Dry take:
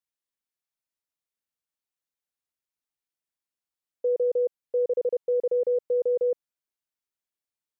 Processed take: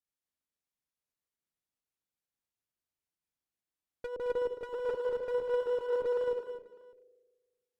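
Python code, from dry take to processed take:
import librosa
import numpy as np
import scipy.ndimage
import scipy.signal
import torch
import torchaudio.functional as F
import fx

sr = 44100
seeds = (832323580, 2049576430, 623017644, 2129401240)

y = fx.reverse_delay(x, sr, ms=351, wet_db=-2, at=(4.2, 6.24))
y = fx.rev_spring(y, sr, rt60_s=1.4, pass_ms=(38,), chirp_ms=45, drr_db=8.5)
y = 10.0 ** (-32.0 / 20.0) * np.tanh(y / 10.0 ** (-32.0 / 20.0))
y = fx.low_shelf(y, sr, hz=450.0, db=7.5)
y = fx.env_lowpass_down(y, sr, base_hz=500.0, full_db=-28.5)
y = fx.clip_asym(y, sr, top_db=-38.0, bottom_db=-31.0)
y = fx.volume_shaper(y, sr, bpm=133, per_beat=1, depth_db=-4, release_ms=69.0, shape='slow start')
y = fx.echo_multitap(y, sr, ms=(167, 218, 257, 601), db=(-14.5, -9.5, -6.0, -15.5))
y = fx.upward_expand(y, sr, threshold_db=-45.0, expansion=1.5)
y = F.gain(torch.from_numpy(y), 2.5).numpy()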